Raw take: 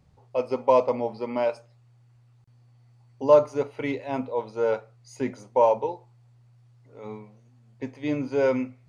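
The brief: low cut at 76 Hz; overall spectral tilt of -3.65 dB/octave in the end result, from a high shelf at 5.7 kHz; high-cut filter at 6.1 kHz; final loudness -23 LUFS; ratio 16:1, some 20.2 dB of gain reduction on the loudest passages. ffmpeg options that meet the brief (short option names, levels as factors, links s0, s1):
-af "highpass=76,lowpass=6100,highshelf=f=5700:g=8.5,acompressor=threshold=0.0282:ratio=16,volume=5.31"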